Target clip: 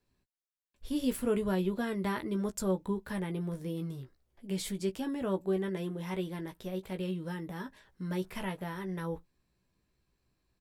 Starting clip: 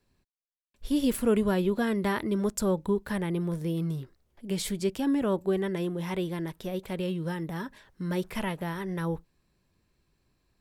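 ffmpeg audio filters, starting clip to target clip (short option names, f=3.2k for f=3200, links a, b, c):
-filter_complex "[0:a]asplit=2[a][b];[b]adelay=16,volume=-7dB[c];[a][c]amix=inputs=2:normalize=0,volume=-6dB"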